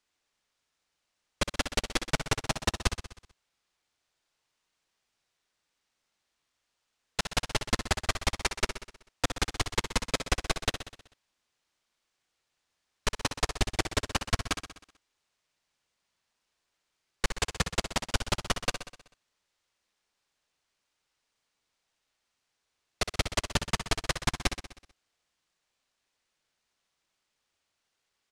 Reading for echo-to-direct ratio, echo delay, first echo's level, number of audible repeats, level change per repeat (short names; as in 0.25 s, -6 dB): -7.5 dB, 63 ms, -9.5 dB, 6, -4.5 dB